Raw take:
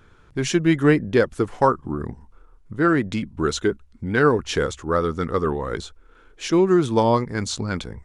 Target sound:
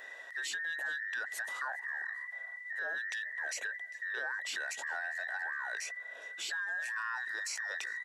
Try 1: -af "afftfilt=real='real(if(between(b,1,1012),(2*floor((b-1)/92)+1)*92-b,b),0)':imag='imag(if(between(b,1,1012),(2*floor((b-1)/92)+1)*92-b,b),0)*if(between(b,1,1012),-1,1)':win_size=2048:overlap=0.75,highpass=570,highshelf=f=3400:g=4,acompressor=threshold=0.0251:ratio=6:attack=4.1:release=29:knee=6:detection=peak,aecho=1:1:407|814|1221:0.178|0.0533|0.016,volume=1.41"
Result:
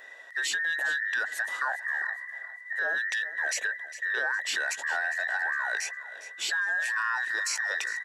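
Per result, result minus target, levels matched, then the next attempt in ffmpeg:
compression: peak gain reduction -8.5 dB; echo-to-direct +9 dB
-af "afftfilt=real='real(if(between(b,1,1012),(2*floor((b-1)/92)+1)*92-b,b),0)':imag='imag(if(between(b,1,1012),(2*floor((b-1)/92)+1)*92-b,b),0)*if(between(b,1,1012),-1,1)':win_size=2048:overlap=0.75,highpass=570,highshelf=f=3400:g=4,acompressor=threshold=0.00794:ratio=6:attack=4.1:release=29:knee=6:detection=peak,aecho=1:1:407|814|1221:0.178|0.0533|0.016,volume=1.41"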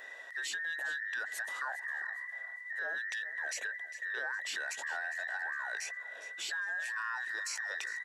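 echo-to-direct +9 dB
-af "afftfilt=real='real(if(between(b,1,1012),(2*floor((b-1)/92)+1)*92-b,b),0)':imag='imag(if(between(b,1,1012),(2*floor((b-1)/92)+1)*92-b,b),0)*if(between(b,1,1012),-1,1)':win_size=2048:overlap=0.75,highpass=570,highshelf=f=3400:g=4,acompressor=threshold=0.00794:ratio=6:attack=4.1:release=29:knee=6:detection=peak,aecho=1:1:407|814:0.0631|0.0189,volume=1.41"

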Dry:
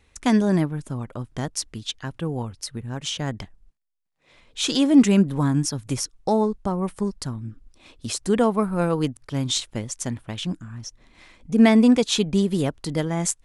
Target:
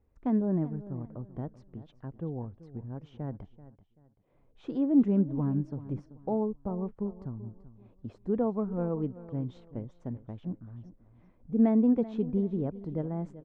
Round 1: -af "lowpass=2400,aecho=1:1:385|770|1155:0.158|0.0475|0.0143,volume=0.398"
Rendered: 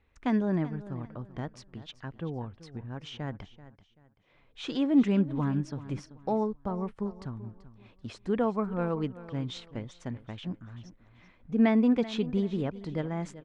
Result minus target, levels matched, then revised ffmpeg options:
2 kHz band +16.0 dB
-af "lowpass=680,aecho=1:1:385|770|1155:0.158|0.0475|0.0143,volume=0.398"

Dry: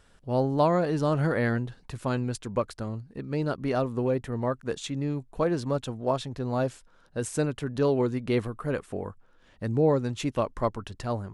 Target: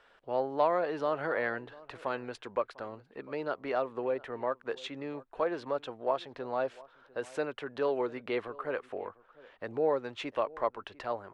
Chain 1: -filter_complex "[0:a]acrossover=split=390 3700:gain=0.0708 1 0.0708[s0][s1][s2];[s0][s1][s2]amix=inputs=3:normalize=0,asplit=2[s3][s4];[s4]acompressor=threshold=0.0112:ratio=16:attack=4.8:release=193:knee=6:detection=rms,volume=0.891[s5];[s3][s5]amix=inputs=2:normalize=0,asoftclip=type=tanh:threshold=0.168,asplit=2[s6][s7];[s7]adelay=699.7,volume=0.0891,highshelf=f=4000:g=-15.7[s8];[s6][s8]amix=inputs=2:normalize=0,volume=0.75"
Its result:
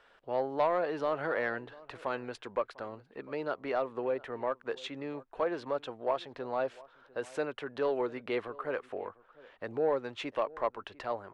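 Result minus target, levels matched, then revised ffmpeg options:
saturation: distortion +13 dB
-filter_complex "[0:a]acrossover=split=390 3700:gain=0.0708 1 0.0708[s0][s1][s2];[s0][s1][s2]amix=inputs=3:normalize=0,asplit=2[s3][s4];[s4]acompressor=threshold=0.0112:ratio=16:attack=4.8:release=193:knee=6:detection=rms,volume=0.891[s5];[s3][s5]amix=inputs=2:normalize=0,asoftclip=type=tanh:threshold=0.398,asplit=2[s6][s7];[s7]adelay=699.7,volume=0.0891,highshelf=f=4000:g=-15.7[s8];[s6][s8]amix=inputs=2:normalize=0,volume=0.75"

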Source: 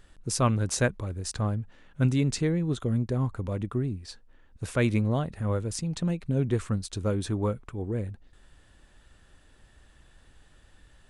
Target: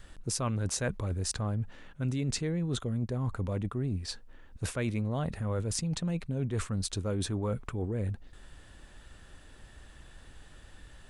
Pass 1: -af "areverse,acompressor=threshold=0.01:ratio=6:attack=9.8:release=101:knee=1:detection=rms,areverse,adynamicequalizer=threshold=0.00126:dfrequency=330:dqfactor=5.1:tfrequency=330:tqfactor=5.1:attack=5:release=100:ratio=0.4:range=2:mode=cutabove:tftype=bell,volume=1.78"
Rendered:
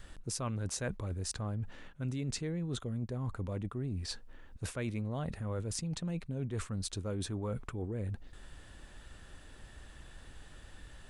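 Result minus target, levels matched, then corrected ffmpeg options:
compression: peak gain reduction +5 dB
-af "areverse,acompressor=threshold=0.02:ratio=6:attack=9.8:release=101:knee=1:detection=rms,areverse,adynamicequalizer=threshold=0.00126:dfrequency=330:dqfactor=5.1:tfrequency=330:tqfactor=5.1:attack=5:release=100:ratio=0.4:range=2:mode=cutabove:tftype=bell,volume=1.78"

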